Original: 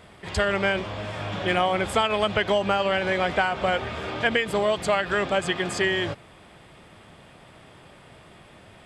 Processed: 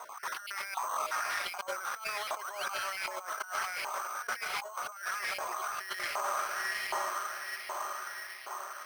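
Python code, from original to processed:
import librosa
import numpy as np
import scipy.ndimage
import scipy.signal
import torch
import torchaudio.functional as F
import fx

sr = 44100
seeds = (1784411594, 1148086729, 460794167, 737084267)

p1 = fx.spec_dropout(x, sr, seeds[0], share_pct=29)
p2 = scipy.signal.sosfilt(scipy.signal.butter(2, 240.0, 'highpass', fs=sr, output='sos'), p1)
p3 = fx.band_shelf(p2, sr, hz=2400.0, db=-8.5, octaves=1.3)
p4 = p3 + fx.echo_diffused(p3, sr, ms=988, feedback_pct=51, wet_db=-9.5, dry=0)
p5 = fx.spec_paint(p4, sr, seeds[1], shape='rise', start_s=2.21, length_s=0.45, low_hz=360.0, high_hz=3600.0, level_db=-40.0)
p6 = fx.filter_lfo_highpass(p5, sr, shape='saw_up', hz=1.3, low_hz=920.0, high_hz=2300.0, q=3.6)
p7 = fx.over_compress(p6, sr, threshold_db=-36.0, ratio=-1.0)
p8 = fx.air_absorb(p7, sr, metres=200.0)
p9 = fx.sample_hold(p8, sr, seeds[2], rate_hz=7300.0, jitter_pct=0)
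y = fx.slew_limit(p9, sr, full_power_hz=140.0)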